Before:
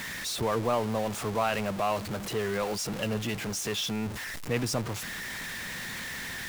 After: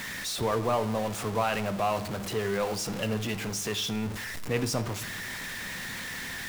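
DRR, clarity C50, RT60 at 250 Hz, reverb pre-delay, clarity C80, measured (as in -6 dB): 11.0 dB, 15.5 dB, 1.0 s, 4 ms, 18.0 dB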